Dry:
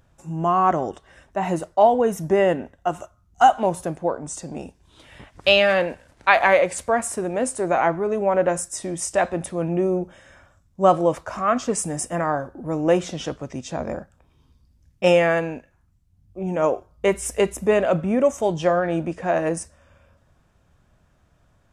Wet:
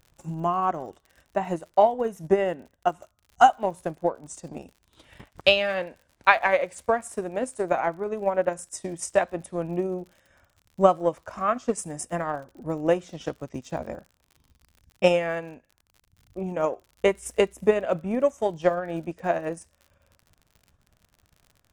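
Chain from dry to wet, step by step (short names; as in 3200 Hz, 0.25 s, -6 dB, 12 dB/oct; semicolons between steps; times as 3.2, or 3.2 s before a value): transient shaper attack +9 dB, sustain -6 dB; crackle 58/s -34 dBFS; gain -8 dB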